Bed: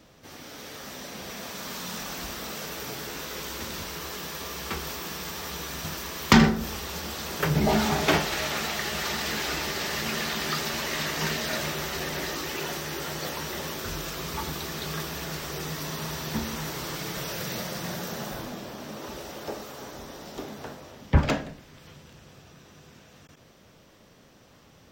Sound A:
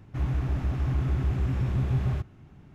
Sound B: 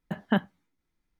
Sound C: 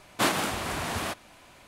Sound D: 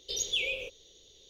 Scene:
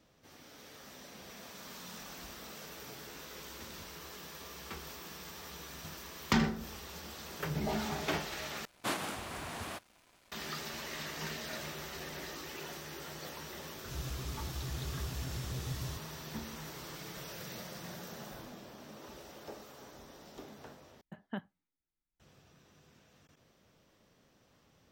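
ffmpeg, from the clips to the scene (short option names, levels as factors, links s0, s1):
-filter_complex "[0:a]volume=0.251[s0];[3:a]acrusher=bits=7:mix=0:aa=0.5[s1];[1:a]aexciter=amount=14.6:drive=4:freq=3300[s2];[s0]asplit=3[s3][s4][s5];[s3]atrim=end=8.654[s6];[s1]atrim=end=1.67,asetpts=PTS-STARTPTS,volume=0.299[s7];[s4]atrim=start=10.316:end=21.014[s8];[2:a]atrim=end=1.19,asetpts=PTS-STARTPTS,volume=0.158[s9];[s5]atrim=start=22.196[s10];[s2]atrim=end=2.74,asetpts=PTS-STARTPTS,volume=0.2,afade=t=in:d=0.004:c=hsin,afade=t=out:st=2.736:d=0.004:c=hsin,adelay=13760[s11];[s6][s7]acrossfade=d=0.004:c1=hsin:c2=hsin[s12];[s12][s8]acrossfade=d=0.004:c1=hsin:c2=hsin[s13];[s13][s9]acrossfade=d=0.004:c1=hsin:c2=hsin[s14];[s14][s10]acrossfade=d=0.004:c1=hsin:c2=hsin[s15];[s15][s11]amix=inputs=2:normalize=0"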